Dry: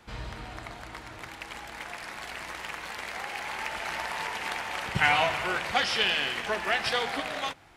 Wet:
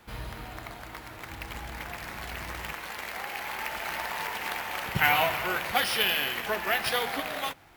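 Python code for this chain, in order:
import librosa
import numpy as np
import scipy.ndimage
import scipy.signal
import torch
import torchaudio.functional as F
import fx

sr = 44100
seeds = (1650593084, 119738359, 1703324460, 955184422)

y = np.repeat(x[::3], 3)[:len(x)]
y = fx.peak_eq(y, sr, hz=69.0, db=14.0, octaves=2.8, at=(1.29, 2.73))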